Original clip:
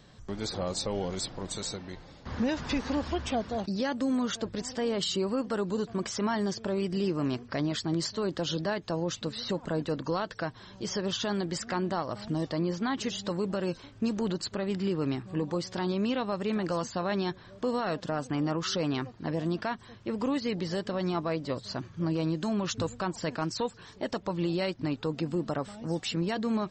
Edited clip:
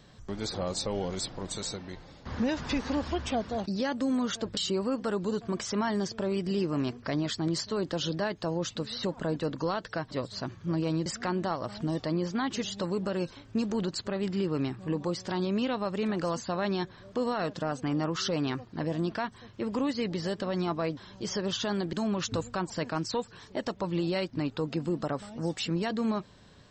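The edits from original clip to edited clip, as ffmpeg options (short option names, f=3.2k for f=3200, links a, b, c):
-filter_complex "[0:a]asplit=6[a][b][c][d][e][f];[a]atrim=end=4.572[g];[b]atrim=start=5.028:end=10.572[h];[c]atrim=start=21.438:end=22.392[i];[d]atrim=start=11.528:end=21.442[j];[e]atrim=start=10.568:end=11.532[k];[f]atrim=start=22.388[l];[g][h]acrossfade=d=0.004:c1=hsin:c2=hsin[m];[m][i]acrossfade=d=0.004:c1=hsin:c2=hsin[n];[n][j]acrossfade=d=0.004:c1=hsin:c2=hsin[o];[o][k]acrossfade=d=0.004:c1=hsin:c2=hsin[p];[p][l]acrossfade=d=0.004:c1=hsin:c2=hsin"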